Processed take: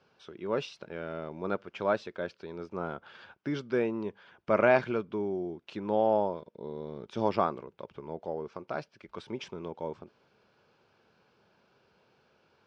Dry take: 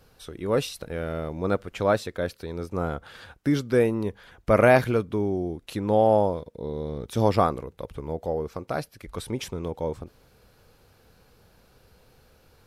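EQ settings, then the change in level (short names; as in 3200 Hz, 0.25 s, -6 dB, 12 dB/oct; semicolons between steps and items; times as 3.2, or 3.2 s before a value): speaker cabinet 270–5300 Hz, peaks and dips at 280 Hz -8 dB, 490 Hz -9 dB, 740 Hz -6 dB, 1200 Hz -4 dB, 1900 Hz -7 dB, 4000 Hz -6 dB; high shelf 4000 Hz -10.5 dB; 0.0 dB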